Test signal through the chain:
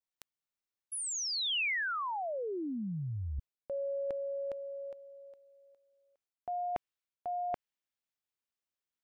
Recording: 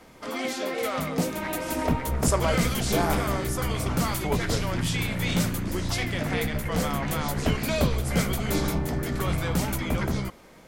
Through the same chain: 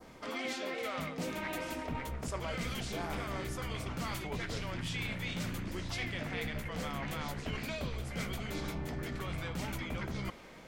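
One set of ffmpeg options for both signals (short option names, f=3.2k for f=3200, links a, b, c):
-af "equalizer=f=12k:w=0.82:g=-7,areverse,acompressor=threshold=-34dB:ratio=6,areverse,adynamicequalizer=threshold=0.00178:dfrequency=2600:dqfactor=0.94:tfrequency=2600:tqfactor=0.94:attack=5:release=100:ratio=0.375:range=2.5:mode=boostabove:tftype=bell,volume=-2dB"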